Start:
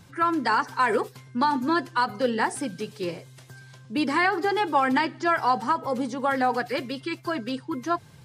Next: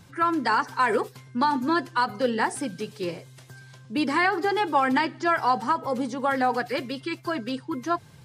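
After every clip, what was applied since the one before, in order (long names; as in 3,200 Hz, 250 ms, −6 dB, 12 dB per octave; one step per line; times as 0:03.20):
no processing that can be heard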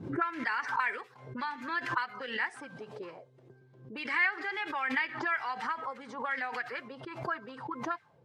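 low-shelf EQ 190 Hz +6 dB
envelope filter 300–2,100 Hz, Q 2.9, up, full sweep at −21 dBFS
background raised ahead of every attack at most 85 dB per second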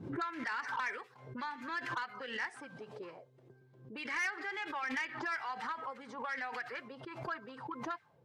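soft clipping −26.5 dBFS, distortion −14 dB
level −3.5 dB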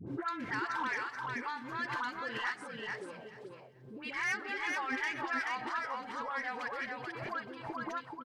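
all-pass dispersion highs, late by 70 ms, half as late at 860 Hz
on a send: repeating echo 433 ms, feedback 16%, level −3.5 dB
on the sum: level +1 dB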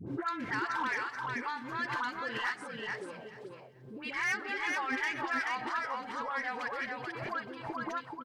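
gain into a clipping stage and back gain 26.5 dB
level +2 dB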